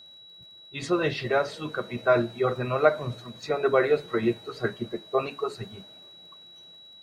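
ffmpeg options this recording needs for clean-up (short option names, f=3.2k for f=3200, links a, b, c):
-af "adeclick=t=4,bandreject=f=3.9k:w=30"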